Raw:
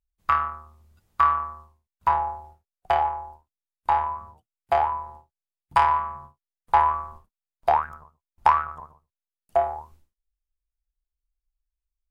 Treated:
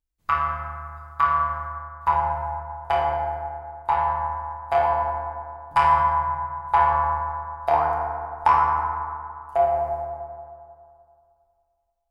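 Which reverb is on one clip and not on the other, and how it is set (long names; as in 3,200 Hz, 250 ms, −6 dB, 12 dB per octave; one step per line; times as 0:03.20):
feedback delay network reverb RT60 2.4 s, low-frequency decay 0.95×, high-frequency decay 0.4×, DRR −3 dB
level −2.5 dB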